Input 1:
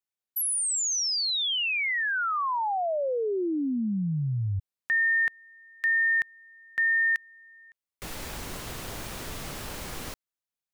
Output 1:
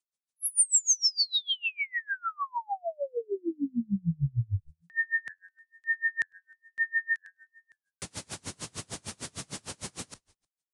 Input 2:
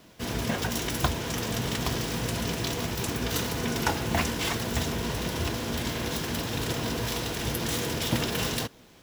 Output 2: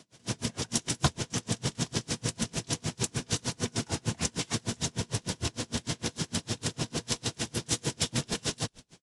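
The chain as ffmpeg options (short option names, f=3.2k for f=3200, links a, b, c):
-filter_complex "[0:a]highpass=f=92:w=0.5412,highpass=f=92:w=1.3066,aresample=22050,aresample=44100,bass=f=250:g=6,treble=f=4k:g=10,asplit=4[a][b][c][d];[b]adelay=103,afreqshift=-90,volume=-21.5dB[e];[c]adelay=206,afreqshift=-180,volume=-29dB[f];[d]adelay=309,afreqshift=-270,volume=-36.6dB[g];[a][e][f][g]amix=inputs=4:normalize=0,aeval=exprs='val(0)*pow(10,-35*(0.5-0.5*cos(2*PI*6.6*n/s))/20)':c=same"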